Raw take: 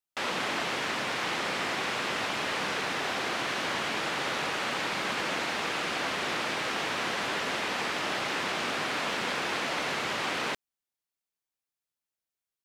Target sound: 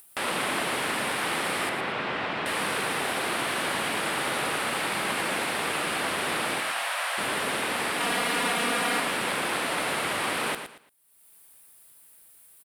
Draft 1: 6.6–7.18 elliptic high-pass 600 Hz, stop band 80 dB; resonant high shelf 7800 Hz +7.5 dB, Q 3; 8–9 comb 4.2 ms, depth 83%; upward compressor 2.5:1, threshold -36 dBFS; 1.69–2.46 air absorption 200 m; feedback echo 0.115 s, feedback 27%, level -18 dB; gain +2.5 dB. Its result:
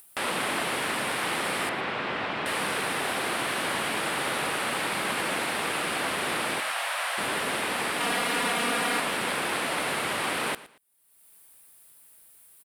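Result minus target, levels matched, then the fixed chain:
echo-to-direct -9 dB
6.6–7.18 elliptic high-pass 600 Hz, stop band 80 dB; resonant high shelf 7800 Hz +7.5 dB, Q 3; 8–9 comb 4.2 ms, depth 83%; upward compressor 2.5:1, threshold -36 dBFS; 1.69–2.46 air absorption 200 m; feedback echo 0.115 s, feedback 27%, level -9 dB; gain +2.5 dB

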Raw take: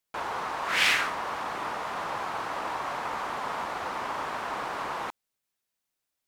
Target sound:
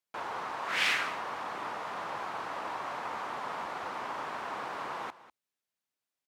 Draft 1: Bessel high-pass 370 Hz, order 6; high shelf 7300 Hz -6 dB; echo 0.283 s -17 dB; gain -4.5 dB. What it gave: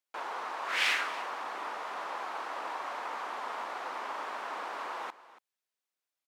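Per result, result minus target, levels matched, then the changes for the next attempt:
125 Hz band -17.5 dB; echo 86 ms late
change: Bessel high-pass 100 Hz, order 6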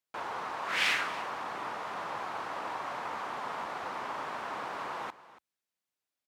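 echo 86 ms late
change: echo 0.197 s -17 dB

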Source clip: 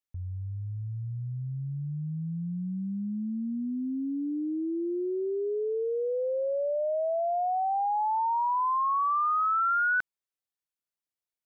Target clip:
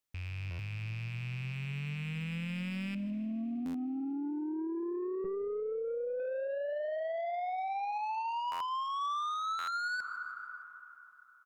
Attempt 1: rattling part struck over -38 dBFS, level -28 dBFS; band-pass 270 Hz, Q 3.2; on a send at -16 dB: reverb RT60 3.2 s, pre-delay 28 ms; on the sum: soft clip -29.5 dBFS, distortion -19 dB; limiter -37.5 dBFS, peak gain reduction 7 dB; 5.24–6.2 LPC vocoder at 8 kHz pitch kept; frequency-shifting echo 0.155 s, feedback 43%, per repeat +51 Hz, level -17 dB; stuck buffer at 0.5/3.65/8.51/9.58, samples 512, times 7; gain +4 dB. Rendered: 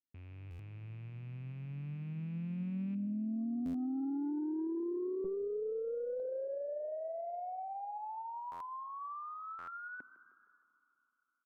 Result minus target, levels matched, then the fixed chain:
250 Hz band +3.0 dB
rattling part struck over -38 dBFS, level -28 dBFS; on a send at -16 dB: reverb RT60 3.2 s, pre-delay 28 ms; on the sum: soft clip -29.5 dBFS, distortion -13 dB; limiter -37.5 dBFS, peak gain reduction 8 dB; 5.24–6.2 LPC vocoder at 8 kHz pitch kept; frequency-shifting echo 0.155 s, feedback 43%, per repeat +51 Hz, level -17 dB; stuck buffer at 0.5/3.65/8.51/9.58, samples 512, times 7; gain +4 dB

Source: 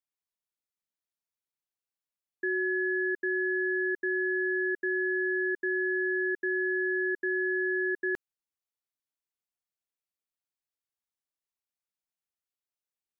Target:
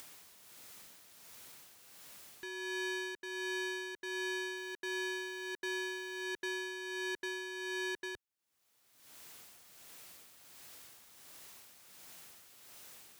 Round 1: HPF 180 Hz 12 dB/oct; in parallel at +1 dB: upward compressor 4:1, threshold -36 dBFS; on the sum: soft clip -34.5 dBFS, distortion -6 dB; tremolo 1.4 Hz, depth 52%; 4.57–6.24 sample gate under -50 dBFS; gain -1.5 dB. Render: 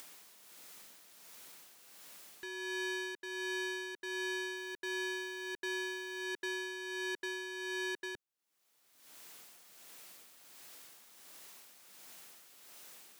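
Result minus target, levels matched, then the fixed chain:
125 Hz band -4.0 dB
HPF 69 Hz 12 dB/oct; in parallel at +1 dB: upward compressor 4:1, threshold -36 dBFS; on the sum: soft clip -34.5 dBFS, distortion -6 dB; tremolo 1.4 Hz, depth 52%; 4.57–6.24 sample gate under -50 dBFS; gain -1.5 dB

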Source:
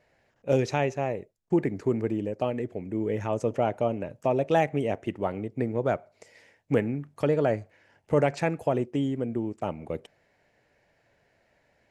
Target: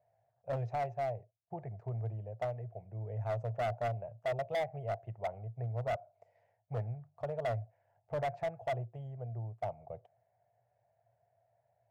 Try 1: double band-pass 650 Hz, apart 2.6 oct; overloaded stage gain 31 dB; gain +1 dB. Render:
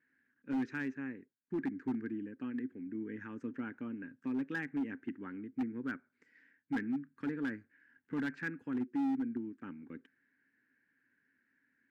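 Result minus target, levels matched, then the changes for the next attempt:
250 Hz band +17.5 dB
change: double band-pass 280 Hz, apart 2.6 oct

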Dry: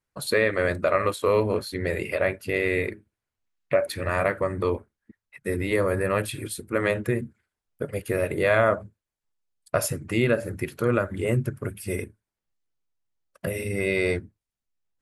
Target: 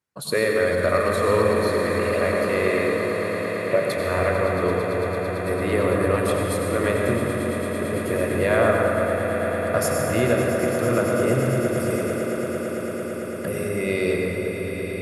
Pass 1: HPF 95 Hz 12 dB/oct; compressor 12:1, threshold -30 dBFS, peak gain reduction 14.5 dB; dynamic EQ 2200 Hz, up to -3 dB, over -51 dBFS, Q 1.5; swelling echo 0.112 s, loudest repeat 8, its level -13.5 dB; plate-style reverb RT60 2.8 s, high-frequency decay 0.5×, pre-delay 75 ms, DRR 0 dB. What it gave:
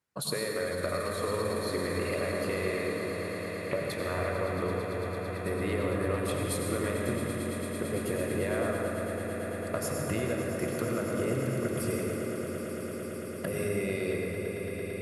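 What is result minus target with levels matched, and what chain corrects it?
compressor: peak gain reduction +14.5 dB
HPF 95 Hz 12 dB/oct; dynamic EQ 2200 Hz, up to -3 dB, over -51 dBFS, Q 1.5; swelling echo 0.112 s, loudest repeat 8, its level -13.5 dB; plate-style reverb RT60 2.8 s, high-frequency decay 0.5×, pre-delay 75 ms, DRR 0 dB

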